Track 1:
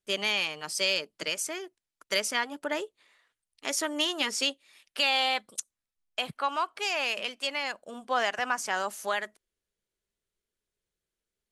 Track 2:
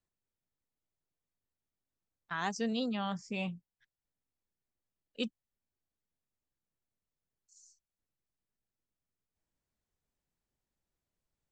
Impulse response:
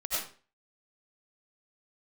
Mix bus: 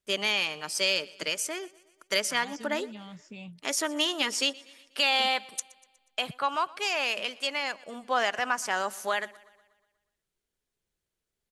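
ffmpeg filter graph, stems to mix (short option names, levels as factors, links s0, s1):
-filter_complex "[0:a]volume=1.12,asplit=2[s0][s1];[s1]volume=0.075[s2];[1:a]acrossover=split=200|3000[s3][s4][s5];[s4]acompressor=threshold=0.00708:ratio=6[s6];[s3][s6][s5]amix=inputs=3:normalize=0,volume=0.631[s7];[s2]aecho=0:1:121|242|363|484|605|726|847|968:1|0.54|0.292|0.157|0.085|0.0459|0.0248|0.0134[s8];[s0][s7][s8]amix=inputs=3:normalize=0"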